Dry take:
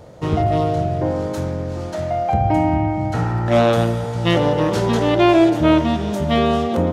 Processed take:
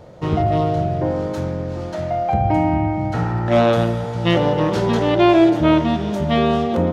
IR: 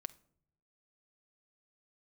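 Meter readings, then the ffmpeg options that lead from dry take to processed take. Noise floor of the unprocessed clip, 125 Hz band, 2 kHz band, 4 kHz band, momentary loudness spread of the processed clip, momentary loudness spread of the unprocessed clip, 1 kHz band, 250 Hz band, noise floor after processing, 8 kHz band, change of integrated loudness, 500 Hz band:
−26 dBFS, −0.5 dB, −0.5 dB, −1.0 dB, 10 LU, 9 LU, 0.0 dB, 0.0 dB, −27 dBFS, can't be measured, 0.0 dB, 0.0 dB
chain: -filter_complex "[0:a]asplit=2[link_01][link_02];[1:a]atrim=start_sample=2205,lowpass=6300[link_03];[link_02][link_03]afir=irnorm=-1:irlink=0,volume=3.5dB[link_04];[link_01][link_04]amix=inputs=2:normalize=0,volume=-6dB"

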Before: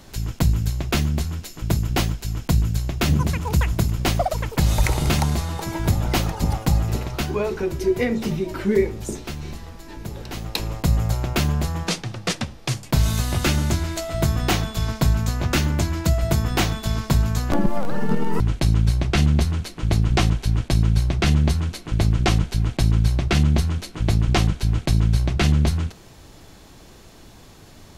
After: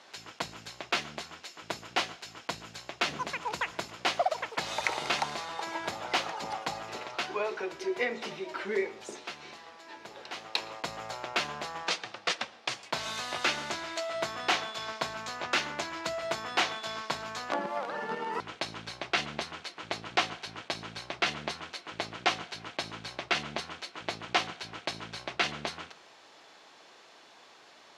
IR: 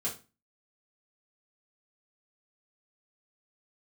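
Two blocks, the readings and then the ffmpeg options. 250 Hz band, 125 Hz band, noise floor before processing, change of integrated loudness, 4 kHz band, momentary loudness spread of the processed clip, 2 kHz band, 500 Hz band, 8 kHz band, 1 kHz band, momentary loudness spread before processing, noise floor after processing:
−19.0 dB, −31.5 dB, −45 dBFS, −11.5 dB, −4.0 dB, 11 LU, −2.0 dB, −8.5 dB, −10.5 dB, −3.5 dB, 8 LU, −56 dBFS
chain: -filter_complex "[0:a]highpass=660,lowpass=4500,asplit=2[link_01][link_02];[1:a]atrim=start_sample=2205,adelay=114[link_03];[link_02][link_03]afir=irnorm=-1:irlink=0,volume=-25.5dB[link_04];[link_01][link_04]amix=inputs=2:normalize=0,volume=-2dB"

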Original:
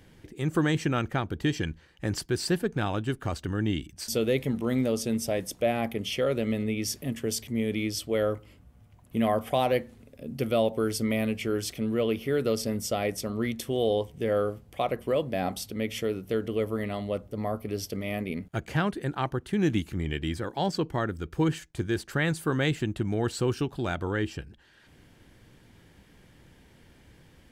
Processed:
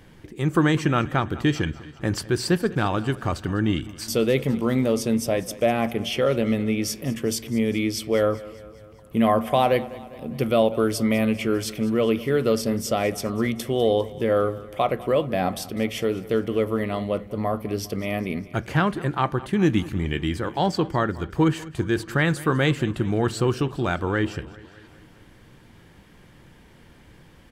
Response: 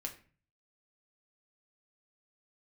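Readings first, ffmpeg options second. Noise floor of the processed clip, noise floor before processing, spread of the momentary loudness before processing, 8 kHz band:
−50 dBFS, −57 dBFS, 6 LU, +3.0 dB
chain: -filter_complex "[0:a]equalizer=frequency=1100:width=2.3:gain=4,aecho=1:1:201|402|603|804|1005:0.112|0.0662|0.0391|0.023|0.0136,asplit=2[link_01][link_02];[1:a]atrim=start_sample=2205,lowpass=4600[link_03];[link_02][link_03]afir=irnorm=-1:irlink=0,volume=-9dB[link_04];[link_01][link_04]amix=inputs=2:normalize=0,volume=3dB"

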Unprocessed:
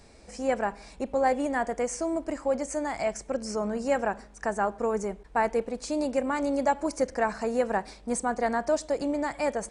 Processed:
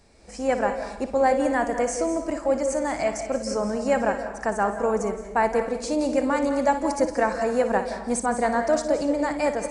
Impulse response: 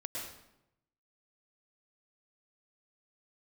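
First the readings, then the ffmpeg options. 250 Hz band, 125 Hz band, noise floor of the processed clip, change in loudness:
+4.5 dB, +4.5 dB, −39 dBFS, +4.5 dB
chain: -filter_complex "[0:a]dynaudnorm=framelen=100:gausssize=5:maxgain=7.5dB,asplit=2[link_01][link_02];[1:a]atrim=start_sample=2205,adelay=59[link_03];[link_02][link_03]afir=irnorm=-1:irlink=0,volume=-7.5dB[link_04];[link_01][link_04]amix=inputs=2:normalize=0,volume=-4dB"

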